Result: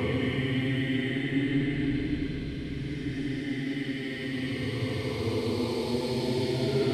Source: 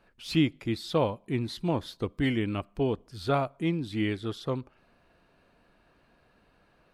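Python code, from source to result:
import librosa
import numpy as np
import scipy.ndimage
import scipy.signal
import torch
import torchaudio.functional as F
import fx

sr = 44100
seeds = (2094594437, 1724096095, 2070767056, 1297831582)

y = fx.reverse_delay_fb(x, sr, ms=437, feedback_pct=65, wet_db=-4.0)
y = fx.echo_stepped(y, sr, ms=327, hz=2800.0, octaves=0.7, feedback_pct=70, wet_db=-8)
y = fx.paulstretch(y, sr, seeds[0], factor=21.0, window_s=0.1, from_s=2.94)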